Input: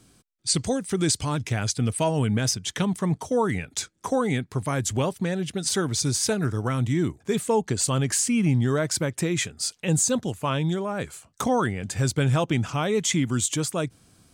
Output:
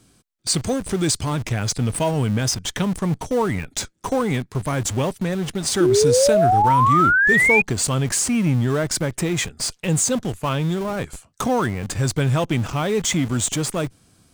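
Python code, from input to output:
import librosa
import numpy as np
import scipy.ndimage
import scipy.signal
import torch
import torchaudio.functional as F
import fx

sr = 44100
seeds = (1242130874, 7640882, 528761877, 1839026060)

p1 = fx.schmitt(x, sr, flips_db=-31.0)
p2 = x + (p1 * 10.0 ** (-9.5 / 20.0))
p3 = fx.spec_paint(p2, sr, seeds[0], shape='rise', start_s=5.8, length_s=1.82, low_hz=340.0, high_hz=2500.0, level_db=-17.0)
y = p3 * 10.0 ** (1.0 / 20.0)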